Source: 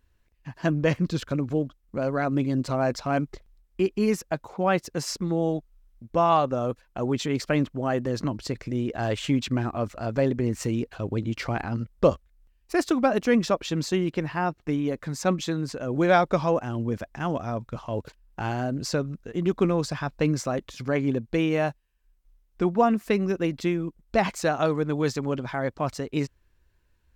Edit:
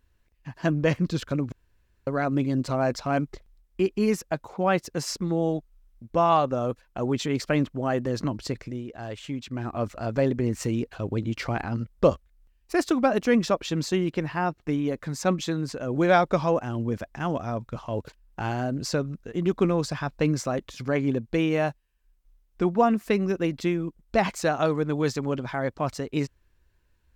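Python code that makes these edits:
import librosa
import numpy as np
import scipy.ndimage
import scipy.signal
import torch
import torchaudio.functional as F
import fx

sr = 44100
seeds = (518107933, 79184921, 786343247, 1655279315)

y = fx.edit(x, sr, fx.room_tone_fill(start_s=1.52, length_s=0.55),
    fx.fade_down_up(start_s=8.53, length_s=1.28, db=-9.0, fade_s=0.3), tone=tone)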